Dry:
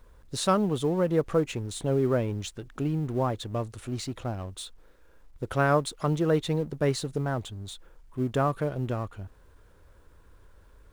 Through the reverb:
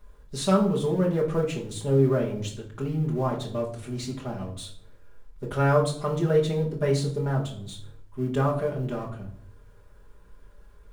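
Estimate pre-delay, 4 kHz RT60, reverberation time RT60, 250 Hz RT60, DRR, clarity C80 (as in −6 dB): 5 ms, 0.40 s, 0.60 s, 0.90 s, −3.5 dB, 13.0 dB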